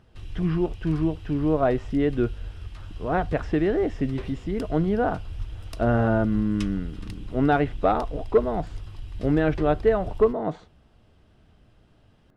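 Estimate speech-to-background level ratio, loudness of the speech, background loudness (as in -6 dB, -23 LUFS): 14.0 dB, -25.0 LUFS, -39.0 LUFS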